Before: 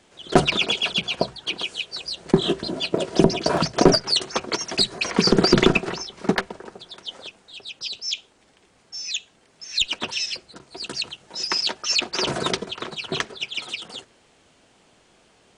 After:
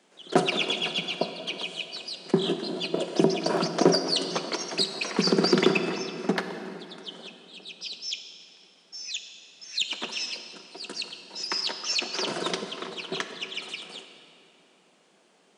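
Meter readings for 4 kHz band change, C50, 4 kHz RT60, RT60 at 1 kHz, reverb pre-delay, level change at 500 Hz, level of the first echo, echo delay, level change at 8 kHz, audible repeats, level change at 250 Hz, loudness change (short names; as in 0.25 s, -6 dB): -5.5 dB, 8.0 dB, 2.1 s, 2.8 s, 22 ms, -4.0 dB, none, none, -5.5 dB, none, -4.5 dB, -5.0 dB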